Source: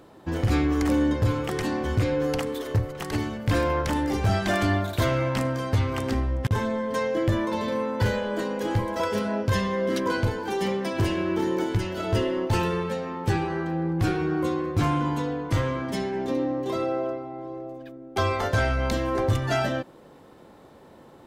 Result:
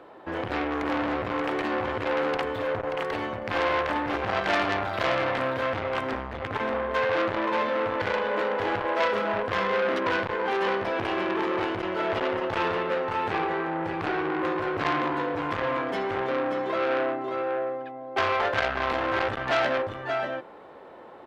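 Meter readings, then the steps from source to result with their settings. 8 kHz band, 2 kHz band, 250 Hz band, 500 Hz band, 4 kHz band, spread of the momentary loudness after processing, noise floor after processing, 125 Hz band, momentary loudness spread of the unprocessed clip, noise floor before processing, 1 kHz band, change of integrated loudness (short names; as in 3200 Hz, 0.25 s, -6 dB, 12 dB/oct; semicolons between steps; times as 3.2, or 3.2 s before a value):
under -10 dB, +4.0 dB, -5.5 dB, +0.5 dB, +0.5 dB, 5 LU, -46 dBFS, -14.5 dB, 5 LU, -50 dBFS, +3.5 dB, -1.0 dB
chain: three-band isolator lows -16 dB, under 370 Hz, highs -22 dB, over 3100 Hz; echo 0.582 s -6.5 dB; core saturation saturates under 2200 Hz; gain +6 dB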